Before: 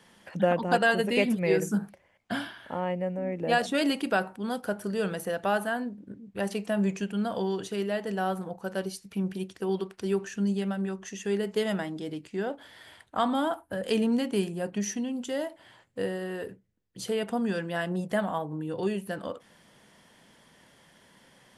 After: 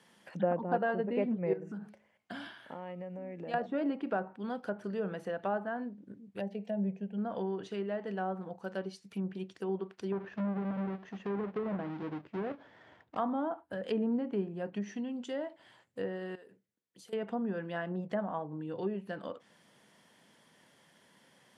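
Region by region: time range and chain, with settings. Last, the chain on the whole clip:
1.53–3.54 s: de-hum 212.7 Hz, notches 18 + compression 4:1, threshold -33 dBFS
6.40–7.18 s: static phaser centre 320 Hz, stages 6 + careless resampling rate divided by 2×, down none, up zero stuff
10.12–13.17 s: square wave that keeps the level + compression 2.5:1, threshold -26 dBFS + tape spacing loss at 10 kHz 36 dB
16.35–17.13 s: high-pass 300 Hz 6 dB/octave + compression 4:1, threshold -49 dBFS
whole clip: low-pass that closes with the level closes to 1.1 kHz, closed at -24 dBFS; high-pass 120 Hz; trim -5.5 dB

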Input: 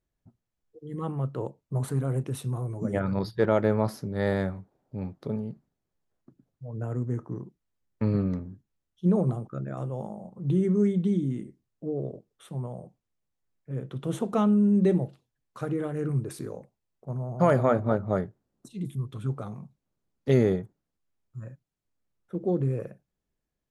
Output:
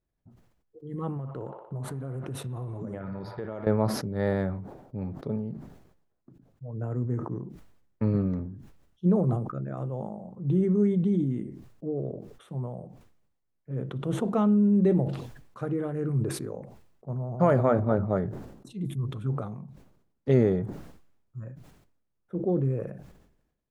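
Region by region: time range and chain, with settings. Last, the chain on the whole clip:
1.17–3.67 s: feedback echo behind a band-pass 60 ms, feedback 75%, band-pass 1.4 kHz, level -8 dB + compression 10:1, threshold -31 dBFS
whole clip: treble shelf 2.7 kHz -10.5 dB; decay stretcher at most 64 dB/s

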